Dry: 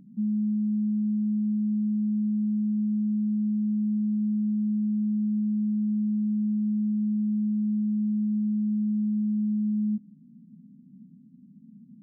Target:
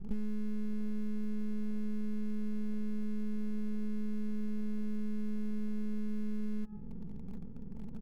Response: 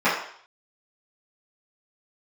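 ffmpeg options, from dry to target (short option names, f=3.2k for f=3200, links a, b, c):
-filter_complex "[0:a]aeval=exprs='max(val(0),0)':c=same,asplit=2[a][b];[1:a]atrim=start_sample=2205,adelay=143[c];[b][c]afir=irnorm=-1:irlink=0,volume=-36.5dB[d];[a][d]amix=inputs=2:normalize=0,acompressor=threshold=-41dB:ratio=8,asplit=2[e][f];[f]aeval=exprs='(mod(158*val(0)+1,2)-1)/158':c=same,volume=-11dB[g];[e][g]amix=inputs=2:normalize=0,adynamicequalizer=threshold=0.00112:dfrequency=280:dqfactor=1.1:tfrequency=280:tqfactor=1.1:attack=5:release=100:ratio=0.375:range=1.5:mode=cutabove:tftype=bell,atempo=1.5,bass=f=250:g=14,treble=f=4k:g=-2,volume=1dB" -ar 48000 -c:a aac -b:a 192k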